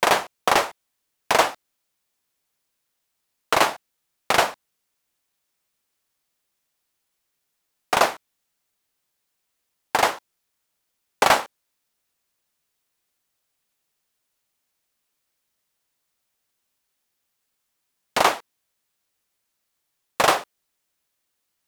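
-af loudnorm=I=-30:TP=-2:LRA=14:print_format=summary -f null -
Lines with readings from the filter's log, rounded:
Input Integrated:    -21.7 LUFS
Input True Peak:      -2.8 dBTP
Input LRA:             3.7 LU
Input Threshold:     -32.7 LUFS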